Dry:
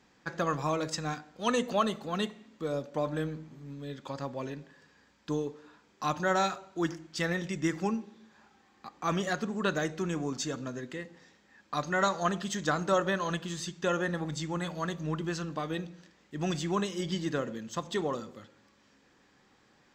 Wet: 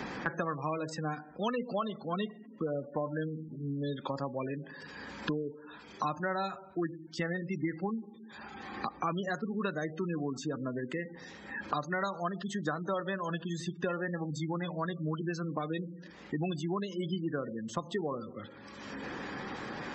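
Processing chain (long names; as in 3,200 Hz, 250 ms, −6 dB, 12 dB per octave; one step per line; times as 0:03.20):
gate on every frequency bin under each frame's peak −20 dB strong
multiband upward and downward compressor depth 100%
level −3 dB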